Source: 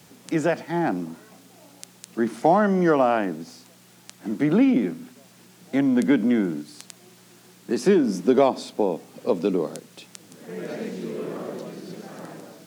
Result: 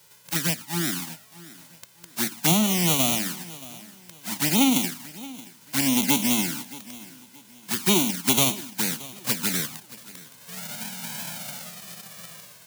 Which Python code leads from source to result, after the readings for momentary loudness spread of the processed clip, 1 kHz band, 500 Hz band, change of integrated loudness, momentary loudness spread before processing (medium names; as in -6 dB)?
20 LU, -6.5 dB, -12.5 dB, -0.5 dB, 19 LU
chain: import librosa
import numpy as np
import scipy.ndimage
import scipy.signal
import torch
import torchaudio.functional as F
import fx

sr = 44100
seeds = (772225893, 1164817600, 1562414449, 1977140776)

y = fx.envelope_flatten(x, sr, power=0.1)
y = fx.env_flanger(y, sr, rest_ms=2.1, full_db=-15.5)
y = fx.echo_feedback(y, sr, ms=625, feedback_pct=33, wet_db=-19)